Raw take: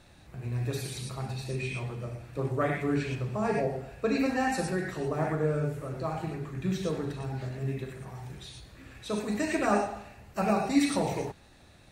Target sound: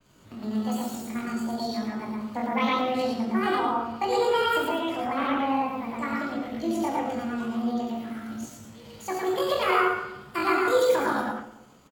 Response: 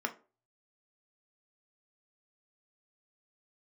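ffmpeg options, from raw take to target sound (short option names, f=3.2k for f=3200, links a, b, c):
-filter_complex "[0:a]agate=range=-33dB:threshold=-51dB:ratio=3:detection=peak,acontrast=34,asetrate=78577,aresample=44100,atempo=0.561231,asplit=2[a][b];[b]adelay=136,lowpass=f=1.8k:p=1,volume=-16dB,asplit=2[c][d];[d]adelay=136,lowpass=f=1.8k:p=1,volume=0.49,asplit=2[e][f];[f]adelay=136,lowpass=f=1.8k:p=1,volume=0.49,asplit=2[g][h];[h]adelay=136,lowpass=f=1.8k:p=1,volume=0.49[i];[a][c][e][g][i]amix=inputs=5:normalize=0,asplit=2[j][k];[1:a]atrim=start_sample=2205,adelay=109[l];[k][l]afir=irnorm=-1:irlink=0,volume=-4dB[m];[j][m]amix=inputs=2:normalize=0,adynamicequalizer=threshold=0.00794:dfrequency=4900:dqfactor=0.7:tfrequency=4900:tqfactor=0.7:attack=5:release=100:ratio=0.375:range=3:mode=cutabove:tftype=highshelf,volume=-4.5dB"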